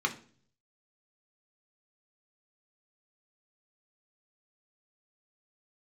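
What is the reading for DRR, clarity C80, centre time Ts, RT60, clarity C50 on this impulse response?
2.5 dB, 19.0 dB, 9 ms, 0.45 s, 14.5 dB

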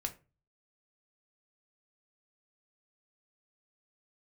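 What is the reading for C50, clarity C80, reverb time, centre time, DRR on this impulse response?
15.5 dB, 21.5 dB, 0.30 s, 7 ms, 4.5 dB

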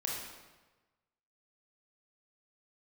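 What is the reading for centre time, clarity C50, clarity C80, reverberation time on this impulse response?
71 ms, 0.5 dB, 3.0 dB, 1.2 s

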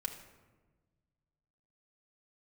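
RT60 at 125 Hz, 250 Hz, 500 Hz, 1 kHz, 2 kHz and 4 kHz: 2.4, 1.8, 1.4, 1.2, 0.95, 0.70 s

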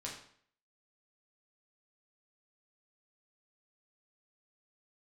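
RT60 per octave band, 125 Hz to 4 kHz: 0.60, 0.60, 0.60, 0.55, 0.55, 0.50 s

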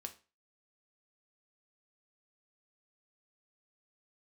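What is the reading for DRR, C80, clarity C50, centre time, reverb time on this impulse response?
5.0 dB, 20.5 dB, 15.0 dB, 6 ms, 0.35 s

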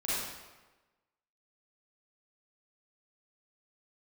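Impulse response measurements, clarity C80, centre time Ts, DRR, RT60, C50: 0.0 dB, 0.104 s, -10.0 dB, 1.2 s, -4.5 dB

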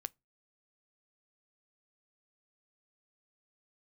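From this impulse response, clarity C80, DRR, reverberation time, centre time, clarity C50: 41.5 dB, 17.0 dB, 0.25 s, 1 ms, 32.5 dB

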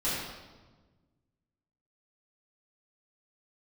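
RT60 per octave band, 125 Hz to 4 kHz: 2.1, 1.9, 1.4, 1.2, 1.0, 1.0 s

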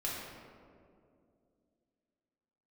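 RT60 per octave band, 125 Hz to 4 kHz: 2.8, 3.2, 2.8, 2.0, 1.4, 1.0 s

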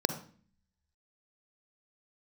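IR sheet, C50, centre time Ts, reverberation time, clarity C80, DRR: 9.0 dB, 12 ms, 0.45 s, 13.0 dB, 8.0 dB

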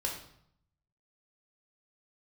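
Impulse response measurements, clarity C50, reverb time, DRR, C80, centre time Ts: 5.5 dB, 0.70 s, -1.5 dB, 9.0 dB, 30 ms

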